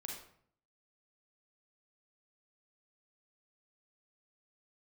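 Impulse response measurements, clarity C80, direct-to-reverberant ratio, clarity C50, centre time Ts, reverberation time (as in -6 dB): 7.0 dB, -1.0 dB, 2.5 dB, 42 ms, 0.60 s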